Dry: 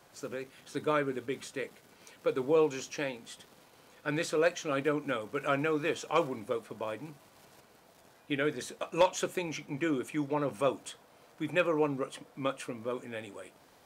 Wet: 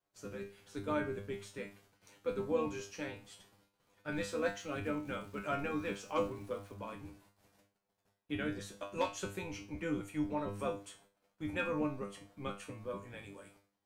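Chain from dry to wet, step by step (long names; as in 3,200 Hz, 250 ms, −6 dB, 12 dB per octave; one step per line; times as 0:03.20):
sub-octave generator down 1 octave, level +1 dB
noise gate −56 dBFS, range −21 dB
tuned comb filter 100 Hz, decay 0.32 s, harmonics all, mix 90%
0:04.11–0:06.74: surface crackle 490 per second −56 dBFS
level +1.5 dB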